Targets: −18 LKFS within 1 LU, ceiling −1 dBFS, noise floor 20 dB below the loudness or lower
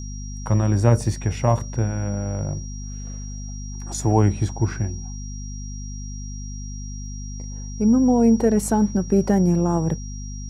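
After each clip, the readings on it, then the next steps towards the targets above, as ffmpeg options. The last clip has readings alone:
mains hum 50 Hz; hum harmonics up to 250 Hz; level of the hum −29 dBFS; interfering tone 5,700 Hz; level of the tone −40 dBFS; integrated loudness −21.0 LKFS; sample peak −1.5 dBFS; target loudness −18.0 LKFS
→ -af "bandreject=frequency=50:width_type=h:width=6,bandreject=frequency=100:width_type=h:width=6,bandreject=frequency=150:width_type=h:width=6,bandreject=frequency=200:width_type=h:width=6,bandreject=frequency=250:width_type=h:width=6"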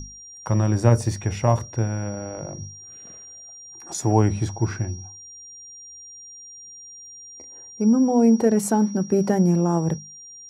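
mains hum none found; interfering tone 5,700 Hz; level of the tone −40 dBFS
→ -af "bandreject=frequency=5700:width=30"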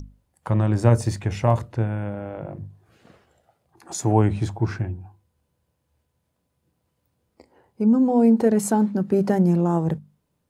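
interfering tone none found; integrated loudness −21.5 LKFS; sample peak −2.0 dBFS; target loudness −18.0 LKFS
→ -af "volume=3.5dB,alimiter=limit=-1dB:level=0:latency=1"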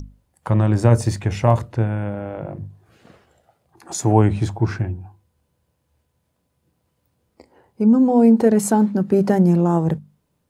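integrated loudness −18.0 LKFS; sample peak −1.0 dBFS; background noise floor −71 dBFS

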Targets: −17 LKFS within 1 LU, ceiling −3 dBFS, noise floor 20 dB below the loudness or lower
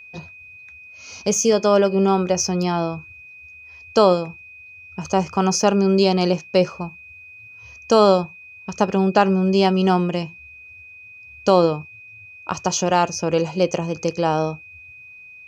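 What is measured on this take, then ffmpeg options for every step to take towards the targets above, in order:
interfering tone 2,500 Hz; level of the tone −40 dBFS; integrated loudness −19.5 LKFS; sample peak −2.5 dBFS; target loudness −17.0 LKFS
→ -af "bandreject=frequency=2500:width=30"
-af "volume=2.5dB,alimiter=limit=-3dB:level=0:latency=1"

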